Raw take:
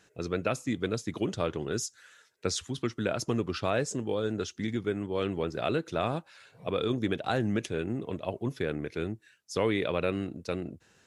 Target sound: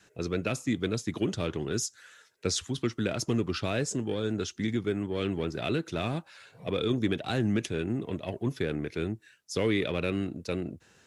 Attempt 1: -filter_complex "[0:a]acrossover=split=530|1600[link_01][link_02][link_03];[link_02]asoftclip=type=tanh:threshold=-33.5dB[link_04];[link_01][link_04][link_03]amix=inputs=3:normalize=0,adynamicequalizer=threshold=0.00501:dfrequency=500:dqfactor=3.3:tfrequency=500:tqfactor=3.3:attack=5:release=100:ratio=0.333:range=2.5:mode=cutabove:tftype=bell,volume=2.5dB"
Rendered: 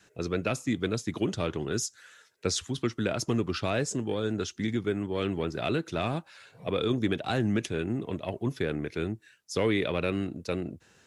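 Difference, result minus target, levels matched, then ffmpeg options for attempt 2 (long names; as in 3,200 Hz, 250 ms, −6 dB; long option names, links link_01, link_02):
soft clipping: distortion −6 dB
-filter_complex "[0:a]acrossover=split=530|1600[link_01][link_02][link_03];[link_02]asoftclip=type=tanh:threshold=-42.5dB[link_04];[link_01][link_04][link_03]amix=inputs=3:normalize=0,adynamicequalizer=threshold=0.00501:dfrequency=500:dqfactor=3.3:tfrequency=500:tqfactor=3.3:attack=5:release=100:ratio=0.333:range=2.5:mode=cutabove:tftype=bell,volume=2.5dB"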